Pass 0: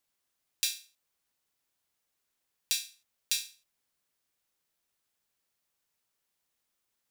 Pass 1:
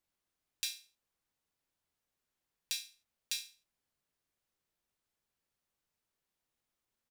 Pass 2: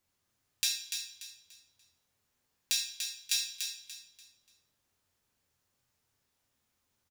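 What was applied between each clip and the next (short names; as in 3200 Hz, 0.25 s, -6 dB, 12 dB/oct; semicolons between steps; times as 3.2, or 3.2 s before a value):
tilt -1.5 dB/oct; doubler 22 ms -13 dB; gain -3.5 dB
feedback echo 0.291 s, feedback 31%, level -6.5 dB; on a send at -4 dB: reverb RT60 0.80 s, pre-delay 3 ms; on the sum: gain +5.5 dB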